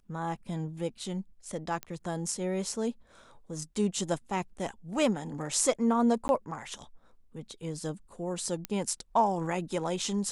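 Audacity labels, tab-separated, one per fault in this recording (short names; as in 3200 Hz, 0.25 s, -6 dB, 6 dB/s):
1.830000	1.830000	pop -20 dBFS
6.280000	6.290000	gap 11 ms
8.650000	8.650000	pop -16 dBFS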